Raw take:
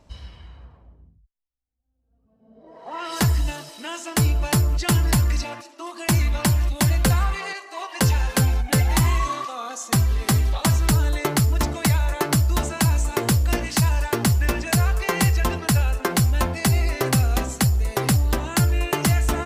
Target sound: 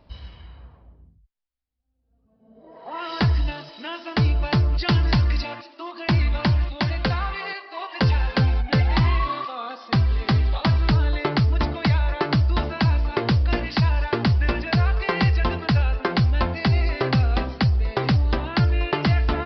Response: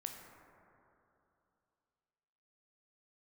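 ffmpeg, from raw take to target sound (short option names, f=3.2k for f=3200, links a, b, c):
-filter_complex "[0:a]asettb=1/sr,asplit=3[a][b][c];[a]atrim=end=6.644[d];[b]atrim=start=6.64:end=7.44,asetpts=PTS-STARTPTS,afade=t=in:d=0.004:c=qsin,afade=t=out:st=0.796:d=0.004:c=qsin,lowshelf=f=190:g=-7.5[e];[c]atrim=start=7.436[f];[d][e]acrossfade=d=0.004:c1=hsin:c2=qsin[g];[g][f]acrossfade=d=0.004:c1=qsin:c2=hsin,aresample=11025,aresample=44100,asettb=1/sr,asplit=3[h][i][j];[h]atrim=end=4.734[k];[i]atrim=start=4.73:end=5.84,asetpts=PTS-STARTPTS,afade=t=in:d=0.004:c=qsin,afade=t=out:st=1.106:d=0.004:c=qsin,highshelf=f=4.3k:g=5.5[l];[j]atrim=start=5.836[m];[k][l]acrossfade=d=0.004:c1=hsin:c2=qsin[n];[n][m]acrossfade=d=0.004:c1=qsin:c2=hsin"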